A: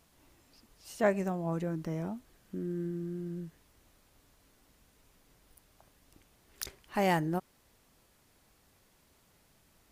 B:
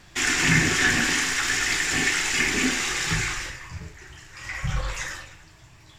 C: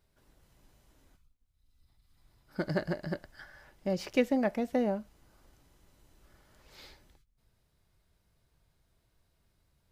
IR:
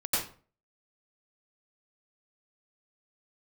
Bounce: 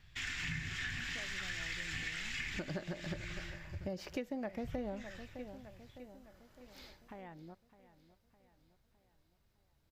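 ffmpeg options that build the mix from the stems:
-filter_complex "[0:a]afwtdn=0.0126,acompressor=threshold=-40dB:ratio=4,adelay=150,volume=-10.5dB,asplit=2[a][b];[b]volume=-16dB[c];[1:a]firequalizer=gain_entry='entry(100,0);entry(320,-20);entry(1800,-7);entry(3500,-5);entry(5900,-14)':delay=0.05:min_phase=1,volume=-6.5dB[d];[2:a]volume=-3dB,asplit=3[e][f][g];[f]volume=-17.5dB[h];[g]apad=whole_len=268157[i];[d][i]sidechaincompress=threshold=-38dB:ratio=4:attack=7.3:release=461[j];[c][h]amix=inputs=2:normalize=0,aecho=0:1:609|1218|1827|2436|3045|3654|4263:1|0.51|0.26|0.133|0.0677|0.0345|0.0176[k];[a][j][e][k]amix=inputs=4:normalize=0,equalizer=f=9.4k:t=o:w=0.32:g=-8,acompressor=threshold=-37dB:ratio=5"

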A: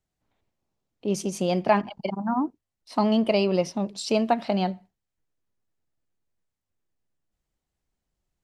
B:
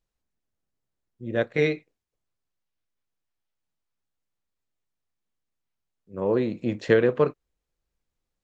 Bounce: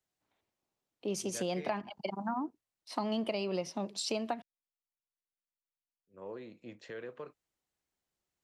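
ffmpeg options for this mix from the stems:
-filter_complex "[0:a]highpass=62,equalizer=f=330:t=o:w=0.77:g=3,volume=-1.5dB,asplit=3[a][b][c];[a]atrim=end=4.42,asetpts=PTS-STARTPTS,afade=t=out:st=4.416:d=0.004:c=hsin[d];[b]atrim=start=4.42:end=6.79,asetpts=PTS-STARTPTS,volume=0[e];[c]atrim=start=6.79,asetpts=PTS-STARTPTS,afade=t=in:d=0.004:c=hsin[f];[d][e][f]concat=n=3:v=0:a=1[g];[1:a]alimiter=limit=-15dB:level=0:latency=1:release=120,volume=-14.5dB[h];[g][h]amix=inputs=2:normalize=0,lowshelf=f=380:g=-11,acrossover=split=170[i][j];[j]acompressor=threshold=-32dB:ratio=6[k];[i][k]amix=inputs=2:normalize=0"

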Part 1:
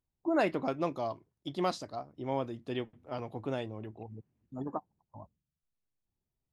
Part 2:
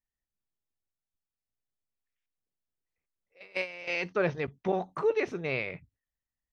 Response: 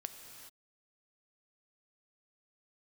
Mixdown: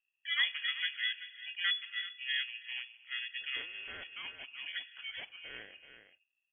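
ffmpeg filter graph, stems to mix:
-filter_complex "[0:a]firequalizer=gain_entry='entry(140,0);entry(280,-13);entry(470,-16);entry(750,3);entry(2400,-28)':delay=0.05:min_phase=1,volume=2dB,asplit=3[a][b][c];[b]volume=-5dB[d];[c]volume=-11.5dB[e];[1:a]equalizer=f=700:t=o:w=2.6:g=-10.5,volume=-9dB,asplit=4[f][g][h][i];[g]volume=-9.5dB[j];[h]volume=-8dB[k];[i]apad=whole_len=292204[l];[a][l]sidechaincompress=threshold=-46dB:ratio=8:attack=16:release=1050[m];[2:a]atrim=start_sample=2205[n];[d][j]amix=inputs=2:normalize=0[o];[o][n]afir=irnorm=-1:irlink=0[p];[e][k]amix=inputs=2:normalize=0,aecho=0:1:384:1[q];[m][f][p][q]amix=inputs=4:normalize=0,aeval=exprs='val(0)*sin(2*PI*730*n/s)':c=same,lowpass=f=2.9k:t=q:w=0.5098,lowpass=f=2.9k:t=q:w=0.6013,lowpass=f=2.9k:t=q:w=0.9,lowpass=f=2.9k:t=q:w=2.563,afreqshift=-3400"

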